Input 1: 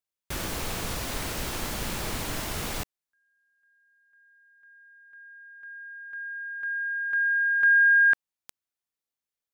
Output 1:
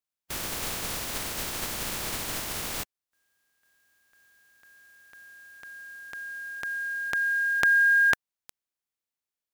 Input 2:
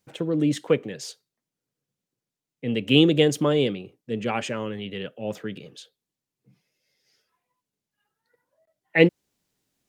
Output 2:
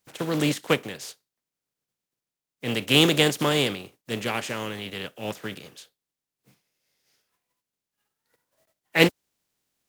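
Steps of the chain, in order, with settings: spectral contrast reduction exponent 0.53; trim -1.5 dB

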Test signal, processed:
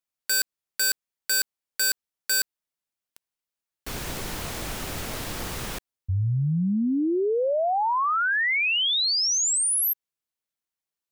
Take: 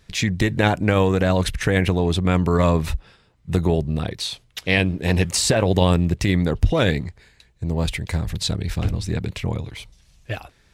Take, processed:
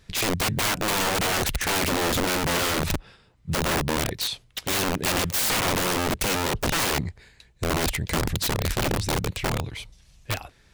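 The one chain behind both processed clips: integer overflow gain 18.5 dB

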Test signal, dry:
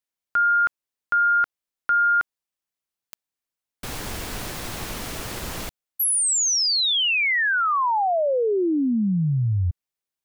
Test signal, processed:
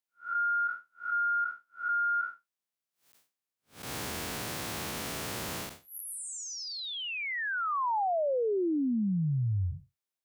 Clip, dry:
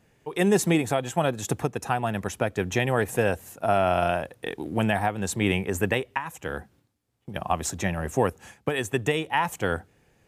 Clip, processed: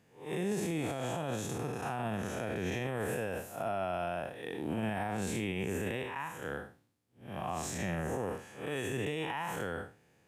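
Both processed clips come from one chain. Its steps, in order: spectral blur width 163 ms; high-pass 100 Hz 12 dB/octave; peak limiter -23.5 dBFS; trim -2 dB

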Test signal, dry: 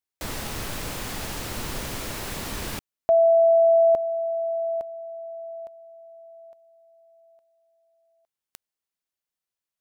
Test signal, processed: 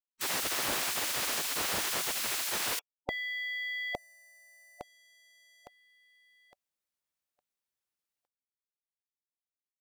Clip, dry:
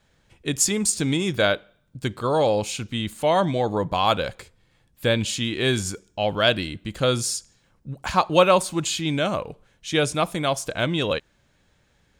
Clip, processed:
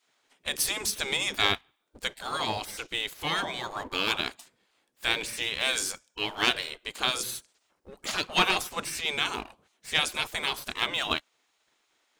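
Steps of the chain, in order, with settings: waveshaping leveller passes 1; spectral gate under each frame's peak -15 dB weak

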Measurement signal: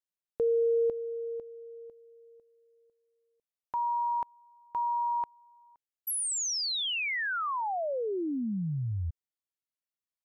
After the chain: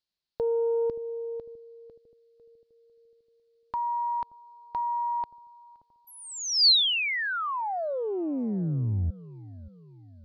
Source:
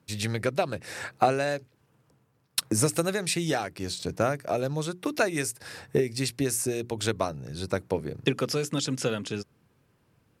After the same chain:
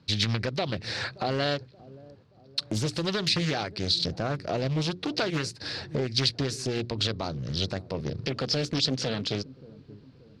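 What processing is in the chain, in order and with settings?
bass shelf 190 Hz +8.5 dB; in parallel at +0.5 dB: compression, threshold -33 dBFS; on the sum: peak limiter -15 dBFS; resonant low-pass 4.4 kHz, resonance Q 4.9; on a send: feedback echo behind a low-pass 577 ms, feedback 47%, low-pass 530 Hz, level -17.5 dB; on the sum: loudspeaker Doppler distortion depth 0.62 ms; trim -4 dB

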